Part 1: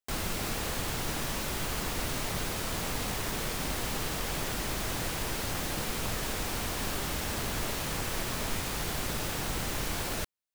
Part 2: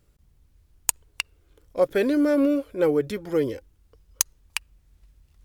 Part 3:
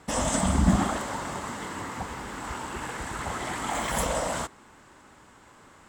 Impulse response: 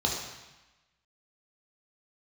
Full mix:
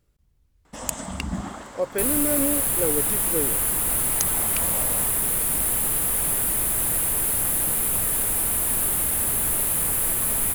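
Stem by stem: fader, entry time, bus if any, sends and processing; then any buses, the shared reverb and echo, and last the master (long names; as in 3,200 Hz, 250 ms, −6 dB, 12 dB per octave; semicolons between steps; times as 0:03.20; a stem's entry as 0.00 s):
+1.5 dB, 1.90 s, no send, high shelf with overshoot 7,700 Hz +13 dB, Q 3
−5.0 dB, 0.00 s, no send, no processing
−0.5 dB, 0.65 s, no send, automatic ducking −8 dB, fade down 0.80 s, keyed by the second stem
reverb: not used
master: no processing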